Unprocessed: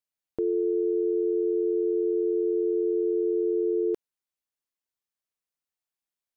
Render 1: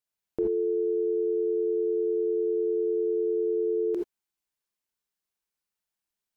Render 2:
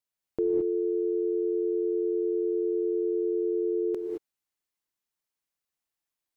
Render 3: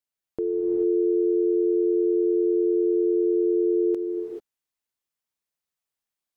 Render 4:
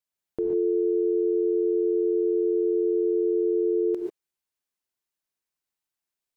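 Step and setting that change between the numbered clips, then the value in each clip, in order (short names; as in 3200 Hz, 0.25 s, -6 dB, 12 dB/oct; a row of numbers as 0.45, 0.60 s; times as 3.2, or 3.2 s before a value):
non-linear reverb, gate: 0.1, 0.24, 0.46, 0.16 s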